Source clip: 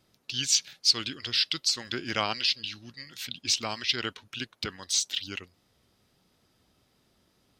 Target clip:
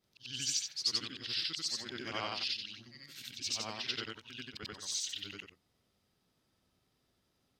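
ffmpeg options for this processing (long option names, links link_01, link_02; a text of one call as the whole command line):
ffmpeg -i in.wav -af "afftfilt=real='re':imag='-im':win_size=8192:overlap=0.75,volume=-4.5dB" out.wav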